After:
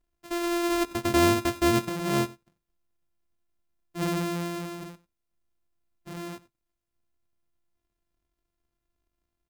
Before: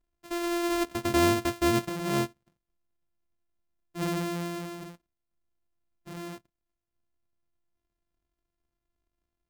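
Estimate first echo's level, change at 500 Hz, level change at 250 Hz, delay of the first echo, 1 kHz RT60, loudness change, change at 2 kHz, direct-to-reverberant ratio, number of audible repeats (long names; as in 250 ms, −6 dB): −21.0 dB, +2.0 dB, +2.0 dB, 95 ms, no reverb audible, +2.0 dB, +2.0 dB, no reverb audible, 1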